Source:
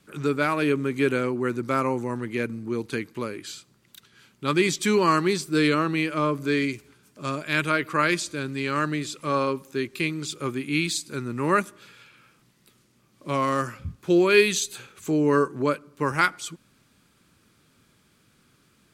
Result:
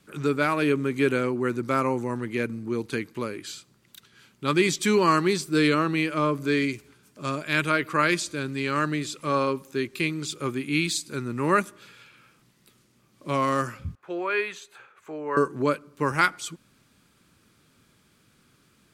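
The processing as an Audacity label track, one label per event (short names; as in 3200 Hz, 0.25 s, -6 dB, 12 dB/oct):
13.950000	15.370000	three-band isolator lows -21 dB, under 560 Hz, highs -21 dB, over 2100 Hz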